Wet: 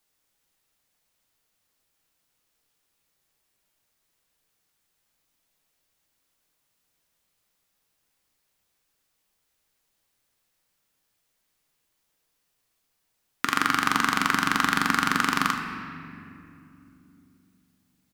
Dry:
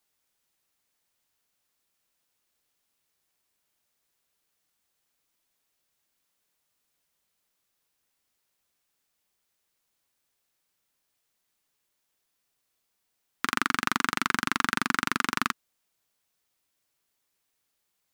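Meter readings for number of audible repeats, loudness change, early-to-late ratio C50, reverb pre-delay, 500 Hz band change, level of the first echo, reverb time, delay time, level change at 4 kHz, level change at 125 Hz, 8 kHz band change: 1, +3.5 dB, 5.0 dB, 6 ms, +3.0 dB, −13.5 dB, 2.8 s, 75 ms, +3.5 dB, +5.5 dB, +2.5 dB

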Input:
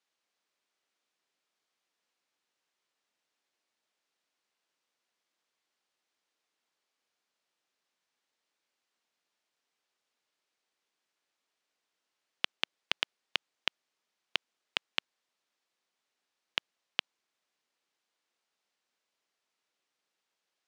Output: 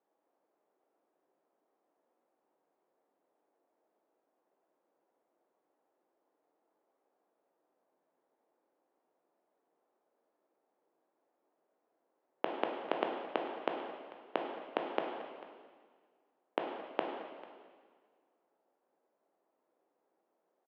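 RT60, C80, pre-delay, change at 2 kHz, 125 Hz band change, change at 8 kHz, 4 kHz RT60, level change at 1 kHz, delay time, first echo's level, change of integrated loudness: 1.7 s, 4.5 dB, 7 ms, −7.5 dB, can't be measured, below −20 dB, 1.7 s, +8.5 dB, 444 ms, −18.5 dB, −3.5 dB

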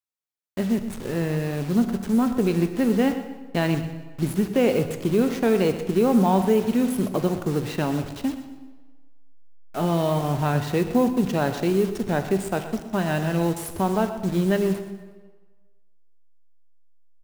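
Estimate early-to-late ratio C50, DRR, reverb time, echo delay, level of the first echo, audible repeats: 9.0 dB, 7.5 dB, 1.4 s, 122 ms, −13.5 dB, 2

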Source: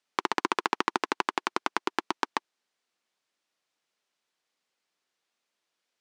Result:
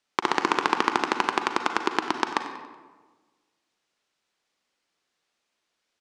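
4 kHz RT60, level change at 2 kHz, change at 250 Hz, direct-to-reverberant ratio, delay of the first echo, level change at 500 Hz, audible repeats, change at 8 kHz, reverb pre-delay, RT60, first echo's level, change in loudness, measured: 0.80 s, +4.5 dB, +5.5 dB, 6.0 dB, 94 ms, +5.0 dB, 2, +3.5 dB, 36 ms, 1.4 s, −15.0 dB, +4.5 dB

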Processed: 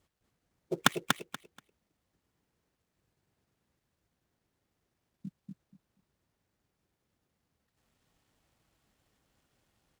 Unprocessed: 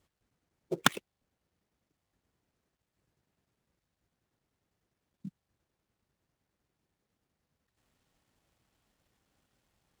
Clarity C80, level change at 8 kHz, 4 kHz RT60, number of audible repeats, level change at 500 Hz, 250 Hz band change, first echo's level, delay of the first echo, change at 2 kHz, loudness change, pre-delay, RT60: no reverb audible, +1.5 dB, no reverb audible, 3, +1.5 dB, +1.5 dB, −4.0 dB, 240 ms, +1.5 dB, −0.5 dB, no reverb audible, no reverb audible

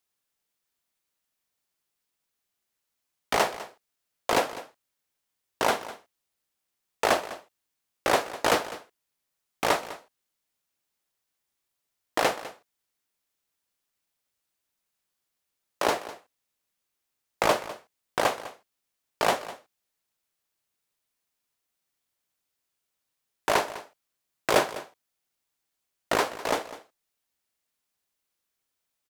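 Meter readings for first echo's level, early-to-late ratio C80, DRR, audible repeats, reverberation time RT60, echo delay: −16.0 dB, no reverb audible, no reverb audible, 1, no reverb audible, 202 ms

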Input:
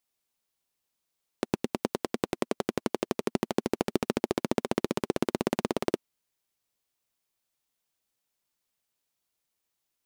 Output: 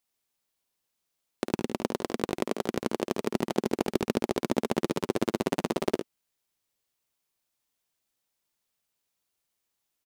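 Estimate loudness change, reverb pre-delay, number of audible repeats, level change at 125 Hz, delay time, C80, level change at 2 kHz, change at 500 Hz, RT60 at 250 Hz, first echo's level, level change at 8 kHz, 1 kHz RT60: +1.0 dB, no reverb audible, 1, +1.0 dB, 53 ms, no reverb audible, +1.0 dB, +1.0 dB, no reverb audible, −8.0 dB, +1.0 dB, no reverb audible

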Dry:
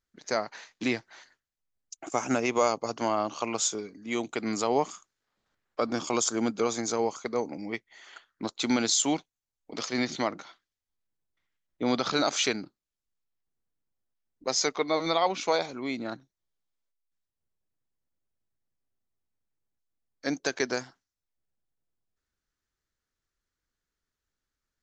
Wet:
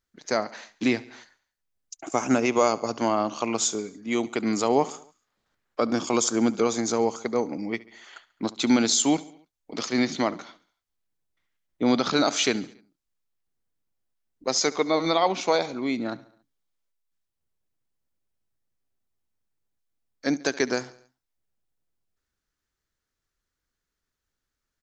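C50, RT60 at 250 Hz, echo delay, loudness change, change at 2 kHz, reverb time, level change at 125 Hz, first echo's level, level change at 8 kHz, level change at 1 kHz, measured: no reverb audible, no reverb audible, 70 ms, +4.0 dB, +2.5 dB, no reverb audible, +4.5 dB, −20.0 dB, +2.5 dB, +3.0 dB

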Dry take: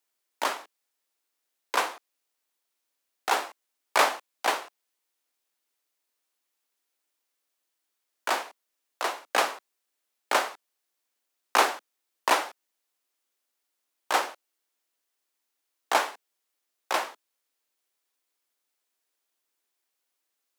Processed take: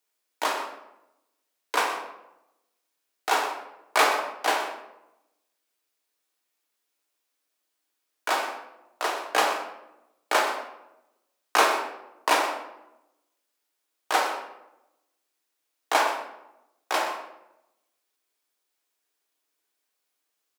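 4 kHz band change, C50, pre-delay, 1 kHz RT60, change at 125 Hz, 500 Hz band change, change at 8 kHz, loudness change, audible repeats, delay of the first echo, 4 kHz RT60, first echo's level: +2.0 dB, 5.5 dB, 3 ms, 0.85 s, can't be measured, +3.0 dB, +1.5 dB, +1.5 dB, 1, 124 ms, 0.55 s, −12.0 dB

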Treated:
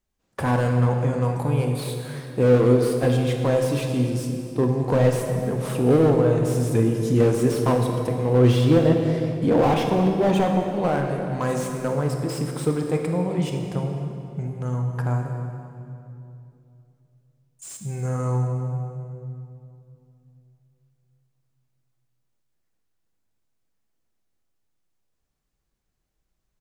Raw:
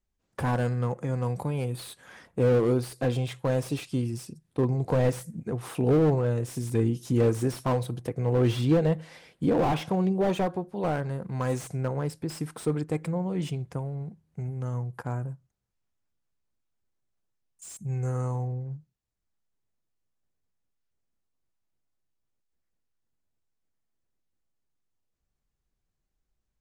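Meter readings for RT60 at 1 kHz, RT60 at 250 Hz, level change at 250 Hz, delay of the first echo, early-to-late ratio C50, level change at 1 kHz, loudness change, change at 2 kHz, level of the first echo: 2.5 s, 3.5 s, +6.5 dB, 262 ms, 4.0 dB, +6.5 dB, +6.0 dB, +6.0 dB, −17.5 dB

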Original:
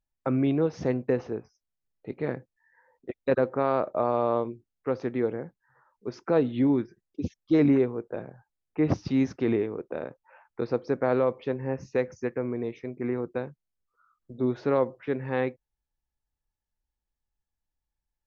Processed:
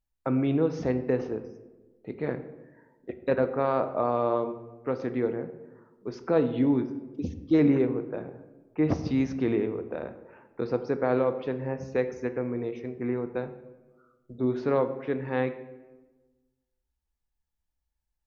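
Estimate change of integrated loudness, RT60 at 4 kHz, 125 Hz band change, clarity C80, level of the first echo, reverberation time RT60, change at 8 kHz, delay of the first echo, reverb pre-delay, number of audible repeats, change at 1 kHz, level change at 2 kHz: −0.5 dB, 0.70 s, 0.0 dB, 14.0 dB, no echo audible, 1.2 s, can't be measured, no echo audible, 3 ms, no echo audible, −0.5 dB, −0.5 dB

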